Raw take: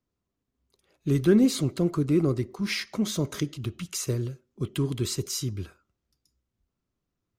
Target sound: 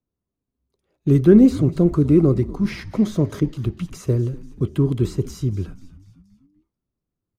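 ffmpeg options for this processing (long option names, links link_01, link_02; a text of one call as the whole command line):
ffmpeg -i in.wav -filter_complex "[0:a]agate=range=-9dB:threshold=-45dB:ratio=16:detection=peak,acrossover=split=520|2000[link_01][link_02][link_03];[link_03]alimiter=level_in=5dB:limit=-24dB:level=0:latency=1:release=206,volume=-5dB[link_04];[link_01][link_02][link_04]amix=inputs=3:normalize=0,tiltshelf=frequency=1200:gain=6,asplit=5[link_05][link_06][link_07][link_08][link_09];[link_06]adelay=243,afreqshift=-100,volume=-17dB[link_10];[link_07]adelay=486,afreqshift=-200,volume=-23.4dB[link_11];[link_08]adelay=729,afreqshift=-300,volume=-29.8dB[link_12];[link_09]adelay=972,afreqshift=-400,volume=-36.1dB[link_13];[link_05][link_10][link_11][link_12][link_13]amix=inputs=5:normalize=0,volume=3dB" out.wav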